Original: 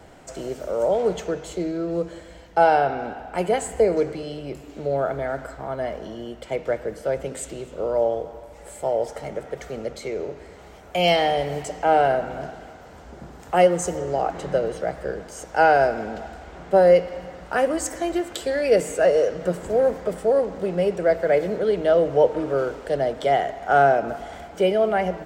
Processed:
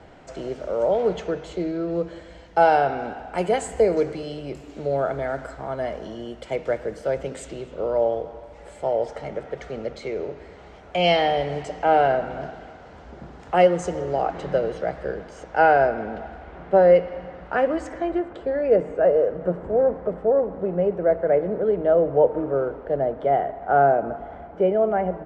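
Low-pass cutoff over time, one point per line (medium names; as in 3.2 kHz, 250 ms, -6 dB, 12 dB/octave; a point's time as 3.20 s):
2.05 s 4.3 kHz
2.80 s 8.2 kHz
6.89 s 8.2 kHz
7.75 s 4.4 kHz
14.96 s 4.4 kHz
15.86 s 2.5 kHz
17.87 s 2.5 kHz
18.36 s 1.2 kHz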